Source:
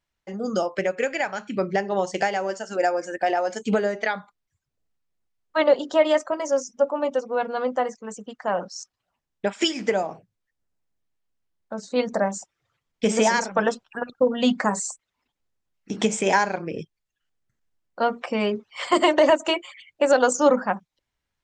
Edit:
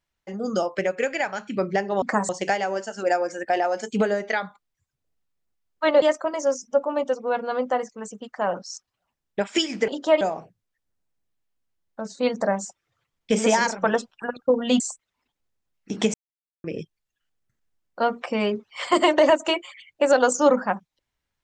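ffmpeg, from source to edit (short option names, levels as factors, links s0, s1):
-filter_complex "[0:a]asplit=9[s0][s1][s2][s3][s4][s5][s6][s7][s8];[s0]atrim=end=2.022[s9];[s1]atrim=start=14.528:end=14.802[s10];[s2]atrim=start=2.018:end=5.752[s11];[s3]atrim=start=6.078:end=9.942[s12];[s4]atrim=start=5.748:end=6.082[s13];[s5]atrim=start=9.938:end=14.532[s14];[s6]atrim=start=14.798:end=16.14,asetpts=PTS-STARTPTS,afade=t=out:st=1.338:d=0.004:c=hsin[s15];[s7]atrim=start=16.14:end=16.64,asetpts=PTS-STARTPTS,volume=0[s16];[s8]atrim=start=16.64,asetpts=PTS-STARTPTS,afade=t=in:d=0.004:c=hsin[s17];[s9][s10]acrossfade=d=0.004:c1=hsin:c2=hsin[s18];[s18][s11]acrossfade=d=0.004:c1=hsin:c2=hsin[s19];[s19][s12]acrossfade=d=0.004:c1=hsin:c2=hsin[s20];[s20][s13]acrossfade=d=0.004:c1=hsin:c2=hsin[s21];[s21][s14]acrossfade=d=0.004:c1=hsin:c2=hsin[s22];[s15][s16][s17]concat=n=3:v=0:a=1[s23];[s22][s23]acrossfade=d=0.004:c1=hsin:c2=hsin"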